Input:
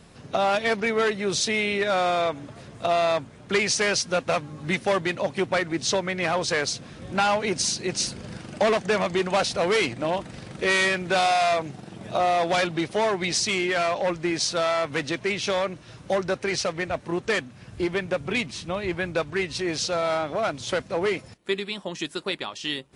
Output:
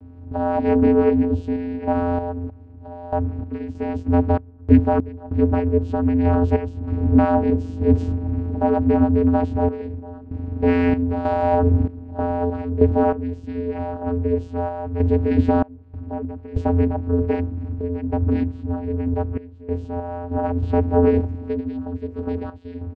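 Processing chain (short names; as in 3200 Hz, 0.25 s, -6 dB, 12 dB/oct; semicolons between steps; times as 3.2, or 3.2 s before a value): zero-crossing step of -33.5 dBFS; LPF 1500 Hz 6 dB/oct; tilt -4.5 dB/oct; notches 50/100/150/200/250/300/350/400/450 Hz; comb 6.3 ms, depth 37%; AGC gain up to 10 dB; vocoder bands 8, square 87 Hz; random-step tremolo 3.2 Hz, depth 95%; gain -1 dB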